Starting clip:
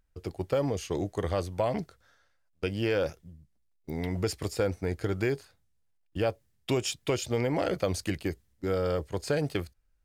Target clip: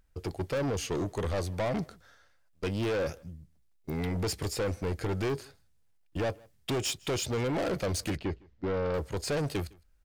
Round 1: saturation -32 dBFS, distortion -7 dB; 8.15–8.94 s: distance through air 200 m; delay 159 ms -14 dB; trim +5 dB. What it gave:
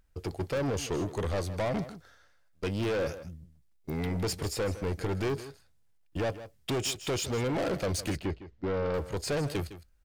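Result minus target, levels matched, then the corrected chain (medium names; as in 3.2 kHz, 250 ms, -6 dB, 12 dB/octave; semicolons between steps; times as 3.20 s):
echo-to-direct +12 dB
saturation -32 dBFS, distortion -7 dB; 8.15–8.94 s: distance through air 200 m; delay 159 ms -26 dB; trim +5 dB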